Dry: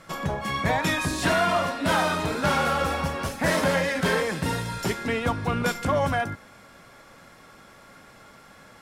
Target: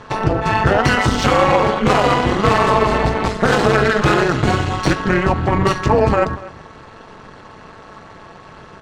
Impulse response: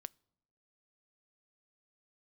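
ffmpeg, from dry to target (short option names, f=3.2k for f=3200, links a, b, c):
-filter_complex "[0:a]adynamicsmooth=sensitivity=4:basefreq=6k,asplit=2[a][b];[1:a]atrim=start_sample=2205[c];[b][c]afir=irnorm=-1:irlink=0,volume=20dB[d];[a][d]amix=inputs=2:normalize=0,tremolo=f=260:d=0.824,alimiter=limit=-1dB:level=0:latency=1:release=97,asplit=2[e][f];[f]adelay=239.1,volume=-18dB,highshelf=f=4k:g=-5.38[g];[e][g]amix=inputs=2:normalize=0,asetrate=35002,aresample=44100,atempo=1.25992,volume=-1dB"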